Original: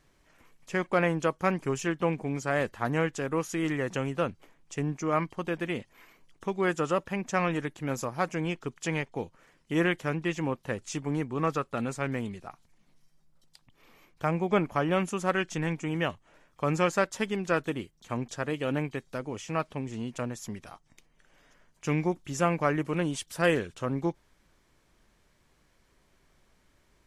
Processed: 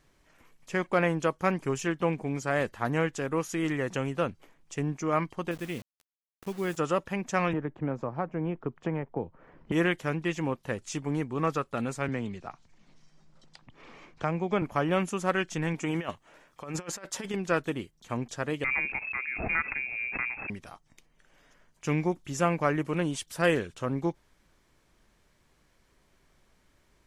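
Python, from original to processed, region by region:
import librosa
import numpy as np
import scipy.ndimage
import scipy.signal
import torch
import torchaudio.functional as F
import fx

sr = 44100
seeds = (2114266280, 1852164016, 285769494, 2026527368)

y = fx.chain(x, sr, fx.peak_eq(hz=1000.0, db=-9.0, octaves=2.6),
    fx.quant_dither(seeds[0], bits=8, dither='none'), at=(5.51, 6.77))
y = fx.chain(y, sr, fx.lowpass(hz=1100.0, slope=12),
    fx.band_squash(depth_pct=100), at=(7.53, 9.72))
y = fx.chain(y, sr, fx.lowpass(hz=7300.0, slope=24),
    fx.band_squash(depth_pct=40), at=(12.08, 14.62))
y = fx.chain(y, sr, fx.low_shelf(hz=150.0, db=-10.0),
    fx.over_compress(threshold_db=-33.0, ratio=-0.5), at=(15.74, 17.34))
y = fx.chain(y, sr, fx.freq_invert(carrier_hz=2600),
    fx.pre_swell(db_per_s=43.0), at=(18.64, 20.5))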